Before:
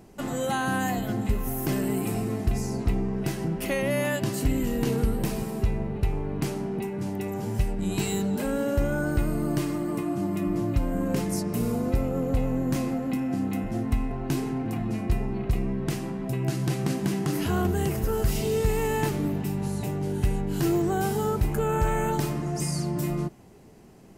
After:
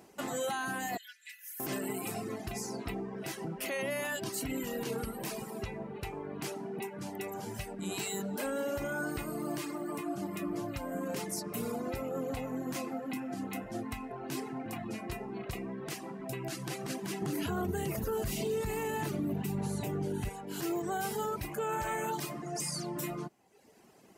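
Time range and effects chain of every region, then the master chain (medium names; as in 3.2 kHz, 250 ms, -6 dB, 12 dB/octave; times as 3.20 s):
0.97–1.60 s: steep high-pass 1.6 kHz 72 dB/octave + tilt EQ -2.5 dB/octave + comb 4.1 ms, depth 70%
17.22–20.29 s: bass shelf 330 Hz +11.5 dB + band-stop 5.2 kHz, Q 17
whole clip: reverb removal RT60 0.96 s; high-pass 520 Hz 6 dB/octave; peak limiter -26 dBFS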